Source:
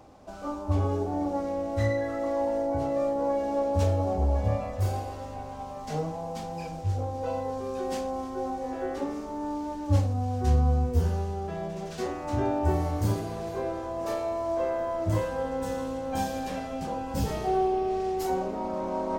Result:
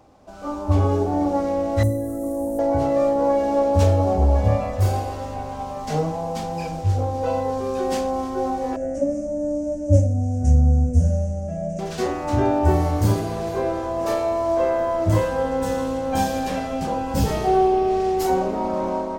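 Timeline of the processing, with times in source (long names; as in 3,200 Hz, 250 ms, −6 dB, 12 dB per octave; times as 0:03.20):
0:01.83–0:02.59: drawn EQ curve 320 Hz 0 dB, 2,000 Hz −25 dB, 5,000 Hz −16 dB, 9,800 Hz +15 dB
0:08.76–0:11.79: drawn EQ curve 290 Hz 0 dB, 410 Hz −28 dB, 580 Hz +9 dB, 960 Hz −30 dB, 1,500 Hz −16 dB, 2,600 Hz −15 dB, 4,000 Hz −26 dB, 6,200 Hz +2 dB, 9,400 Hz −2 dB, 14,000 Hz −28 dB
whole clip: automatic gain control gain up to 9 dB; level −1 dB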